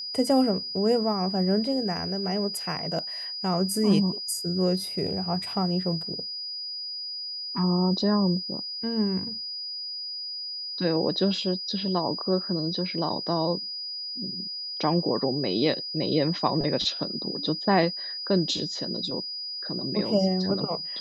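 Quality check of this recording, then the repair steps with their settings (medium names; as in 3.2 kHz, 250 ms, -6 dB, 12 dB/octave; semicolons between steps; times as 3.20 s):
whine 4.9 kHz -32 dBFS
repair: band-stop 4.9 kHz, Q 30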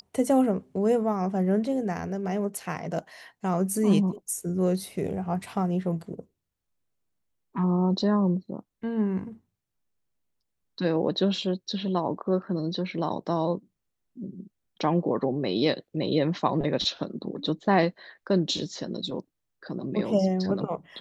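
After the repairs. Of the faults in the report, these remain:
nothing left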